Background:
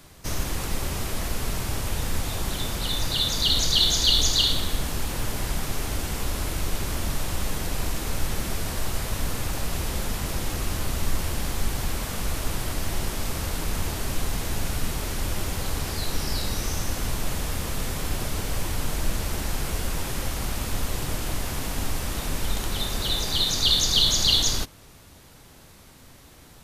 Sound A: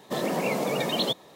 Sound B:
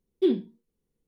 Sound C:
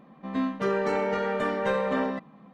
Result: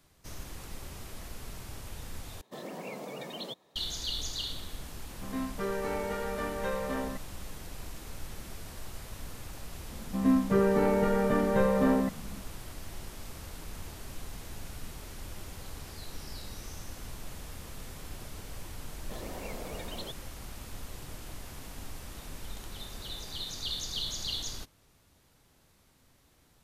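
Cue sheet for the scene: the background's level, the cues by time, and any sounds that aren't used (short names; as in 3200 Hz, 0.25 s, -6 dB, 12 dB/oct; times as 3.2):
background -15 dB
2.41 replace with A -14 dB
4.98 add C -7.5 dB
9.9 add C -2.5 dB + RIAA curve playback
18.99 add A -15.5 dB
not used: B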